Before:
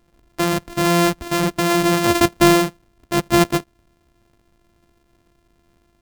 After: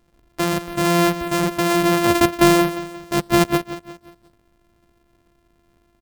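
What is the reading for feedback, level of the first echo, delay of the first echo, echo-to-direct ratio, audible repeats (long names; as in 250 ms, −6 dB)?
43%, −14.0 dB, 177 ms, −13.0 dB, 3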